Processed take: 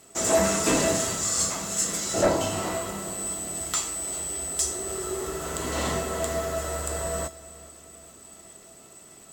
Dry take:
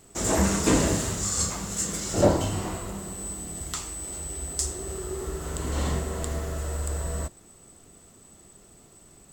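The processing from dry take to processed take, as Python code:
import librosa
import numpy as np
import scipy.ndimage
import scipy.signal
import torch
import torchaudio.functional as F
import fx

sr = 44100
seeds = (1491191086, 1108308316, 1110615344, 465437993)

p1 = fx.highpass(x, sr, hz=140.0, slope=6)
p2 = fx.low_shelf(p1, sr, hz=240.0, db=-5.5)
p3 = fx.rider(p2, sr, range_db=3, speed_s=0.5)
p4 = p2 + (p3 * 10.0 ** (-1.5 / 20.0))
p5 = fx.dmg_crackle(p4, sr, seeds[0], per_s=39.0, level_db=-40.0)
p6 = fx.fold_sine(p5, sr, drive_db=9, ceiling_db=-1.0)
p7 = fx.comb_fb(p6, sr, f0_hz=660.0, decay_s=0.25, harmonics='all', damping=0.0, mix_pct=80)
p8 = fx.echo_feedback(p7, sr, ms=414, feedback_pct=55, wet_db=-21.0)
y = p8 * 10.0 ** (-2.0 / 20.0)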